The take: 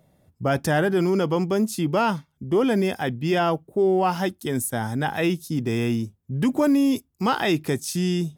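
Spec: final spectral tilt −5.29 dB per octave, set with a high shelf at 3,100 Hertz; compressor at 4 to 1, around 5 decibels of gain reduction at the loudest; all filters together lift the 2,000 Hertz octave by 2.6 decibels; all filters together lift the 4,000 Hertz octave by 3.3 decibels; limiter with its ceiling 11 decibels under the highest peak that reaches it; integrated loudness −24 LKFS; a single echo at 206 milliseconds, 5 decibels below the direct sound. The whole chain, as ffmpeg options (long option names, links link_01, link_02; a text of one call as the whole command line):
ffmpeg -i in.wav -af "equalizer=frequency=2000:width_type=o:gain=4,highshelf=frequency=3100:gain=-7.5,equalizer=frequency=4000:width_type=o:gain=8.5,acompressor=threshold=-22dB:ratio=4,alimiter=limit=-23.5dB:level=0:latency=1,aecho=1:1:206:0.562,volume=7dB" out.wav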